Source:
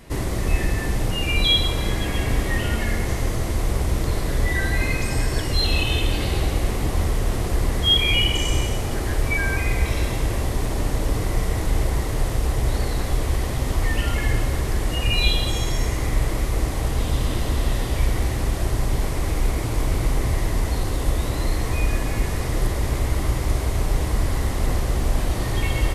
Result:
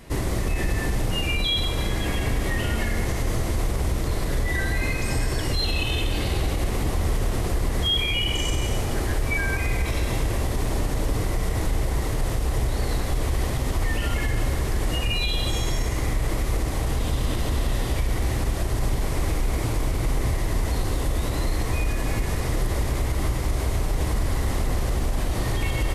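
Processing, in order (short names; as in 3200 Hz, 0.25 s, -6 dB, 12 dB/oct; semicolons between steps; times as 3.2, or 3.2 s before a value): limiter -15 dBFS, peak gain reduction 9 dB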